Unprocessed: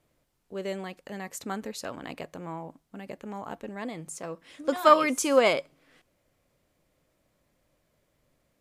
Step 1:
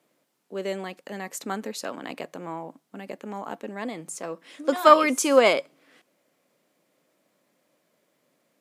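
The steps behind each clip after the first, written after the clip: HPF 190 Hz 24 dB/oct; gain +3.5 dB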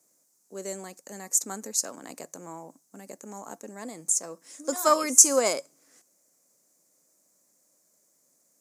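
resonant high shelf 4600 Hz +13.5 dB, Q 3; gain -6.5 dB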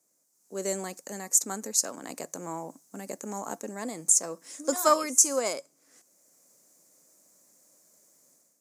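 AGC gain up to 11 dB; gain -5.5 dB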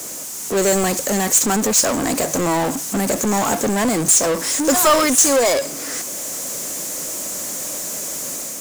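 power-law curve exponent 0.35

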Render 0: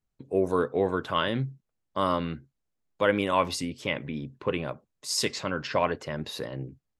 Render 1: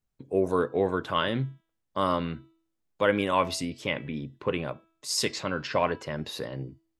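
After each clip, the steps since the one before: de-hum 327.8 Hz, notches 16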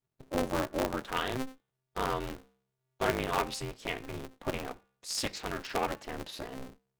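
polarity switched at an audio rate 130 Hz; gain -6 dB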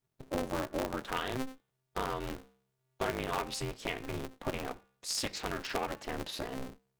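compressor 3:1, threshold -35 dBFS, peak gain reduction 9 dB; gain +3 dB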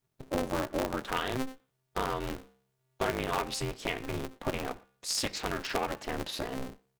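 speakerphone echo 0.12 s, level -26 dB; gain +3 dB

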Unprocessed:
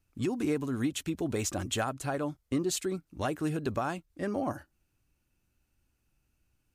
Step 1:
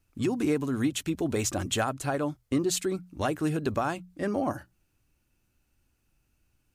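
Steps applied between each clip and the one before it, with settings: notches 60/120/180 Hz; gain +3.5 dB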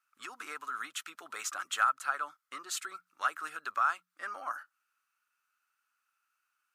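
resonant high-pass 1300 Hz, resonance Q 7.3; gain -7 dB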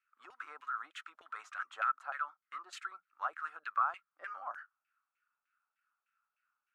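LFO band-pass saw down 3.3 Hz 580–2400 Hz; gain +1.5 dB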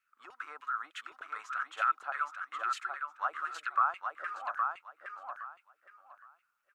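feedback echo 0.816 s, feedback 22%, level -4.5 dB; gain +3.5 dB

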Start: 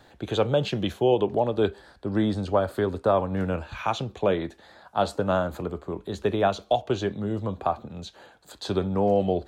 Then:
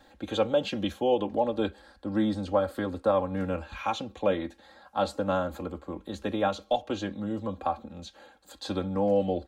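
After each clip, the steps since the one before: comb 3.7 ms, depth 80%; gain -5 dB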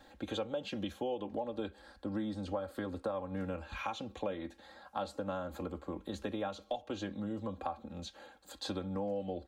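compressor 4:1, threshold -34 dBFS, peak gain reduction 12.5 dB; gain -1.5 dB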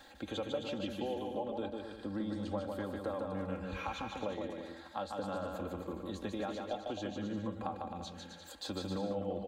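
bouncing-ball echo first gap 0.15 s, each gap 0.75×, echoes 5; mismatched tape noise reduction encoder only; gain -2 dB

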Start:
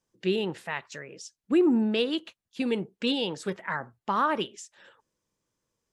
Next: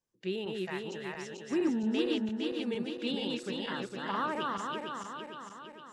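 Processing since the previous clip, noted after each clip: regenerating reverse delay 0.229 s, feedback 73%, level -2 dB; gain -8.5 dB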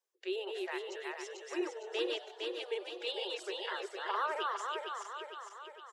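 steep high-pass 360 Hz 96 dB/oct; reverb removal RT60 0.58 s; frequency-shifting echo 97 ms, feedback 58%, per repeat +130 Hz, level -18 dB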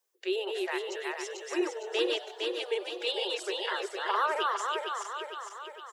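high shelf 9600 Hz +7.5 dB; gain +6 dB

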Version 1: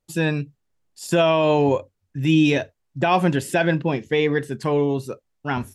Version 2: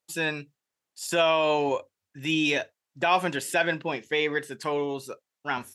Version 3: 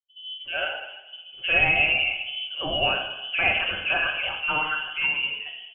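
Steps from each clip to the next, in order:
HPF 930 Hz 6 dB/oct
three bands offset in time lows, mids, highs 0.31/0.36 s, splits 190/1100 Hz; reverb RT60 1.2 s, pre-delay 5 ms, DRR 1 dB; inverted band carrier 3200 Hz

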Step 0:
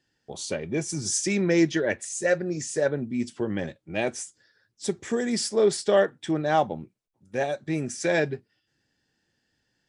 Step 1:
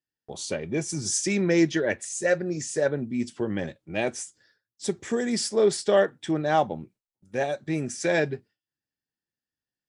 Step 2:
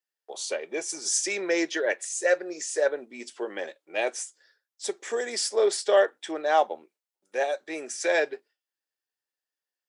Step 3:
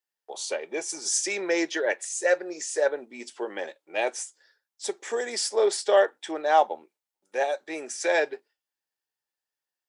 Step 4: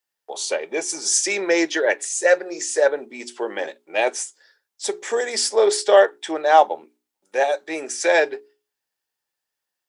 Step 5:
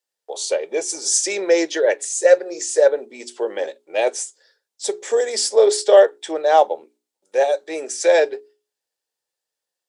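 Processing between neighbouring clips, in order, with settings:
gate with hold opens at -53 dBFS
HPF 420 Hz 24 dB/oct; gain +1 dB
bell 870 Hz +5.5 dB 0.3 oct
notches 60/120/180/240/300/360/420 Hz; gain +6.5 dB
graphic EQ 500/4000/8000 Hz +11/+5/+7 dB; gain -6 dB

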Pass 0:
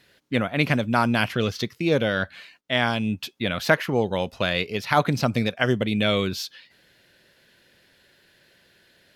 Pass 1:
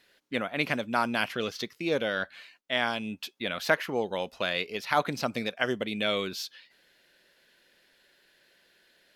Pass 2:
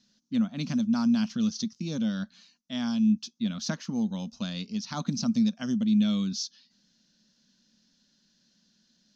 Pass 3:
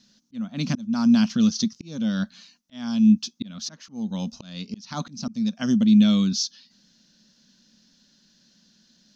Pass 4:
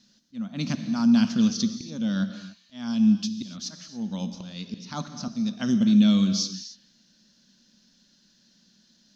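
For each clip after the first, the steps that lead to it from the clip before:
bell 96 Hz -15 dB 1.8 oct; gain -4.5 dB
EQ curve 120 Hz 0 dB, 220 Hz +15 dB, 390 Hz -16 dB, 1200 Hz -10 dB, 2100 Hz -19 dB, 6200 Hz +9 dB, 9600 Hz -27 dB
auto swell 0.392 s; gain +7.5 dB
non-linear reverb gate 0.31 s flat, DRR 8.5 dB; gain -2 dB

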